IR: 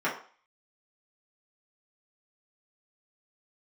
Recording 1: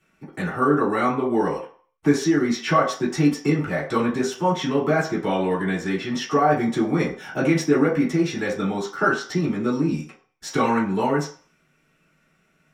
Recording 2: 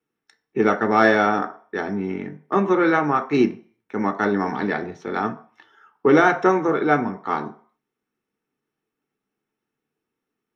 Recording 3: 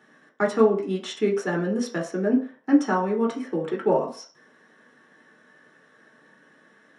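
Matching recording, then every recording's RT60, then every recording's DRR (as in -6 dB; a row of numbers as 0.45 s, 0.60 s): 1; 0.45 s, 0.45 s, 0.45 s; -7.5 dB, 6.0 dB, -2.0 dB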